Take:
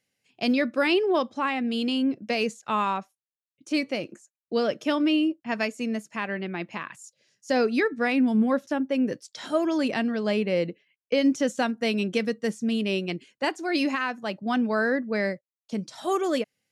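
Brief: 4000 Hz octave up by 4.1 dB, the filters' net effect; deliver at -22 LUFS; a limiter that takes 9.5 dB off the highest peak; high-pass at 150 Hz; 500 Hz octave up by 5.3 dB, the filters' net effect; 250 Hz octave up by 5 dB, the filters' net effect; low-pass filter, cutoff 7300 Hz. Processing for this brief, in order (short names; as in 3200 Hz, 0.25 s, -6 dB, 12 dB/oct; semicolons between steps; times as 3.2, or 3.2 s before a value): HPF 150 Hz; LPF 7300 Hz; bell 250 Hz +5 dB; bell 500 Hz +5 dB; bell 4000 Hz +6 dB; gain +3.5 dB; limiter -12.5 dBFS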